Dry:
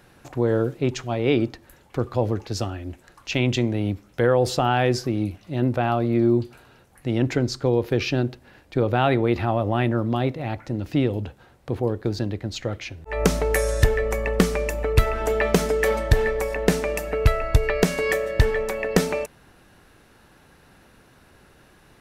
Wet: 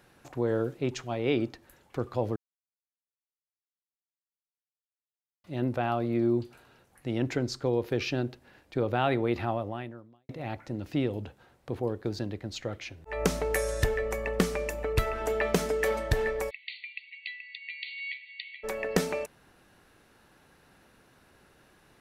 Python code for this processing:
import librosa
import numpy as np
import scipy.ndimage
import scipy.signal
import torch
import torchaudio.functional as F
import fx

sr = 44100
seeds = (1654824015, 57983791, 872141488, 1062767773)

y = fx.brickwall_bandpass(x, sr, low_hz=1900.0, high_hz=4600.0, at=(16.49, 18.63), fade=0.02)
y = fx.edit(y, sr, fx.silence(start_s=2.36, length_s=3.08),
    fx.fade_out_span(start_s=9.49, length_s=0.8, curve='qua'), tone=tone)
y = fx.low_shelf(y, sr, hz=130.0, db=-5.5)
y = F.gain(torch.from_numpy(y), -6.0).numpy()